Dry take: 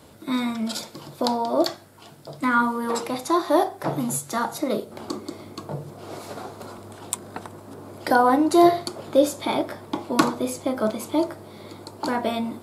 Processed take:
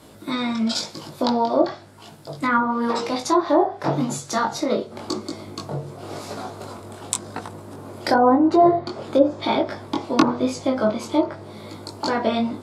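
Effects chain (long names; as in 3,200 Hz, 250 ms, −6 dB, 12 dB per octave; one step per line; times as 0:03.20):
treble cut that deepens with the level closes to 910 Hz, closed at −14.5 dBFS
chorus effect 0.94 Hz, delay 18.5 ms, depth 3.9 ms
dynamic equaliser 5,400 Hz, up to +7 dB, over −54 dBFS, Q 1.4
level +6 dB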